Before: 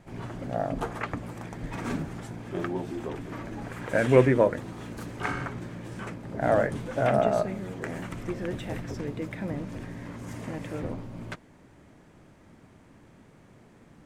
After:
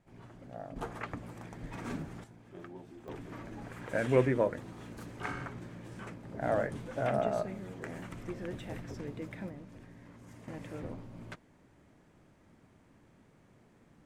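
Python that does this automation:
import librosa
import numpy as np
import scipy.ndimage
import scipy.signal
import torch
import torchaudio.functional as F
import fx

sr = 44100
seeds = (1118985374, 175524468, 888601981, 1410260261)

y = fx.gain(x, sr, db=fx.steps((0.0, -15.0), (0.76, -7.5), (2.24, -16.5), (3.08, -7.5), (9.49, -14.0), (10.48, -8.0)))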